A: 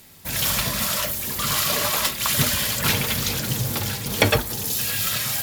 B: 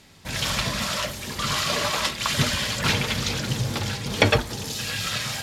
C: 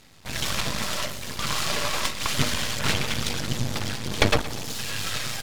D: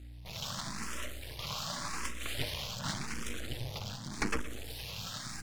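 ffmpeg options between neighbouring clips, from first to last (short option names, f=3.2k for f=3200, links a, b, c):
-af "lowpass=6k"
-af "aeval=exprs='max(val(0),0)':c=same,aecho=1:1:118|236|354|472|590:0.158|0.0808|0.0412|0.021|0.0107,volume=2dB"
-filter_complex "[0:a]aeval=exprs='val(0)+0.0158*(sin(2*PI*60*n/s)+sin(2*PI*2*60*n/s)/2+sin(2*PI*3*60*n/s)/3+sin(2*PI*4*60*n/s)/4+sin(2*PI*5*60*n/s)/5)':c=same,asplit=2[a][b];[b]afreqshift=0.87[c];[a][c]amix=inputs=2:normalize=1,volume=-9dB"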